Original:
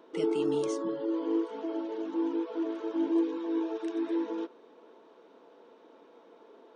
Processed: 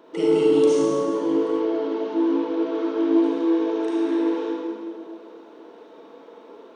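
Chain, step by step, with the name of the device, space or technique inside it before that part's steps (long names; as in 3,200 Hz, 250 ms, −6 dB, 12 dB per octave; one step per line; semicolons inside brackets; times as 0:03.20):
stairwell (convolution reverb RT60 1.9 s, pre-delay 35 ms, DRR −4.5 dB)
0:01.60–0:03.24: low-pass filter 6,200 Hz 24 dB per octave
level +4.5 dB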